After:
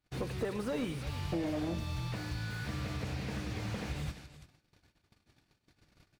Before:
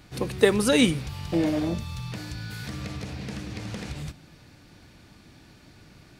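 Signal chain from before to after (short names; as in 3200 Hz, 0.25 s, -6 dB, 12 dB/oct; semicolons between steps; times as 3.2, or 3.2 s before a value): gate -48 dBFS, range -31 dB; bell 220 Hz -4.5 dB 1.8 oct; compressor 5:1, threshold -31 dBFS, peak gain reduction 15.5 dB; tapped delay 99/342 ms -18/-16.5 dB; slew limiter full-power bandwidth 17 Hz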